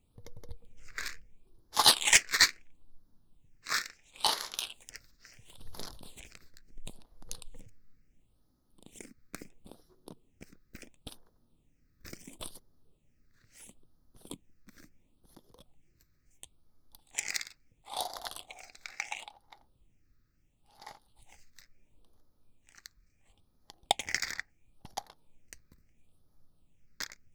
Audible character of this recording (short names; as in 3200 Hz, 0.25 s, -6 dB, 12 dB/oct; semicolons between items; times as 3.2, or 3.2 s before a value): phasing stages 6, 0.73 Hz, lowest notch 800–2500 Hz